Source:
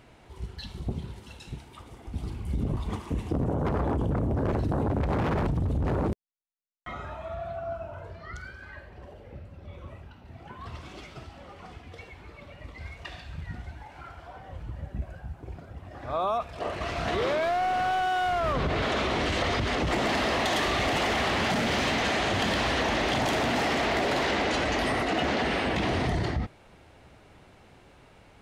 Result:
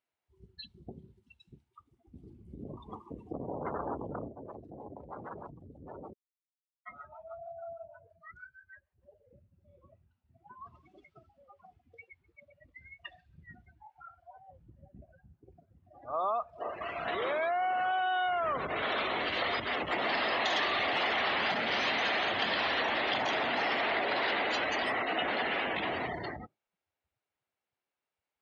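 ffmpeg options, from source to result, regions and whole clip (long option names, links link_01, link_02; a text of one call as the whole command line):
ffmpeg -i in.wav -filter_complex "[0:a]asettb=1/sr,asplit=3[link_01][link_02][link_03];[link_01]atrim=end=4.284[link_04];[link_02]atrim=start=4.28:end=9.03,asetpts=PTS-STARTPTS,afade=type=in:duration=0.004:curve=qsin,afade=type=out:start_time=4.746:duration=0.004:curve=qsin,acrossover=split=530[link_05][link_06];[link_05]aeval=exprs='val(0)*(1-0.7/2+0.7/2*cos(2*PI*6.4*n/s))':channel_layout=same[link_07];[link_06]aeval=exprs='val(0)*(1-0.7/2-0.7/2*cos(2*PI*6.4*n/s))':channel_layout=same[link_08];[link_07][link_08]amix=inputs=2:normalize=0,acompressor=threshold=-32dB:ratio=3:attack=3.2:release=140:knee=1:detection=peak[link_09];[link_03]atrim=start=9.026[link_10];[link_04][link_09]acrossfade=duration=0.004:curve1=hsin:curve2=qsin[link_11];[link_11][link_10]acrossfade=duration=0.004:curve1=qsin:curve2=hsin,afftdn=noise_reduction=32:noise_floor=-35,highpass=frequency=920:poles=1" out.wav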